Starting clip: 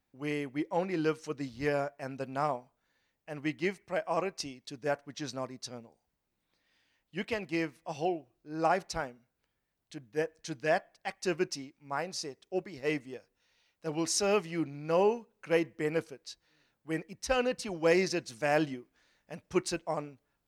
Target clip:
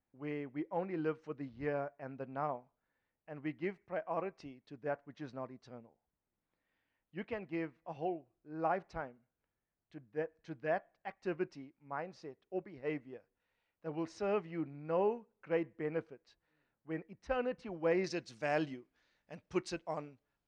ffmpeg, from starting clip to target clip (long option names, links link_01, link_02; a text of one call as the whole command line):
ffmpeg -i in.wav -af "asetnsamples=nb_out_samples=441:pad=0,asendcmd='18.04 lowpass f 5200',lowpass=1900,volume=-6dB" out.wav